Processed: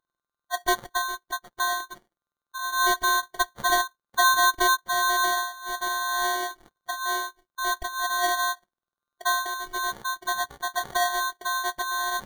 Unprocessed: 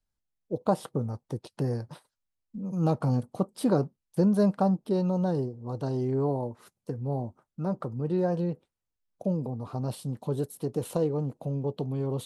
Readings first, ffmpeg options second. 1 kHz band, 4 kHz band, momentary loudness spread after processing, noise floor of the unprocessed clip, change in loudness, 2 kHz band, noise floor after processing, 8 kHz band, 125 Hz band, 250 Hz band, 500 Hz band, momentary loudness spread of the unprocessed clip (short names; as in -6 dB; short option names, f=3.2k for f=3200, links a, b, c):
+14.0 dB, +22.5 dB, 10 LU, -85 dBFS, +4.0 dB, +28.0 dB, under -85 dBFS, n/a, under -25 dB, -15.5 dB, -4.5 dB, 10 LU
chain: -af "afftfilt=real='real(if(lt(b,736),b+184*(1-2*mod(floor(b/184),2)),b),0)':imag='imag(if(lt(b,736),b+184*(1-2*mod(floor(b/184),2)),b),0)':win_size=2048:overlap=0.75,afftfilt=real='hypot(re,im)*cos(PI*b)':imag='0':win_size=512:overlap=0.75,acrusher=samples=17:mix=1:aa=0.000001,volume=4dB"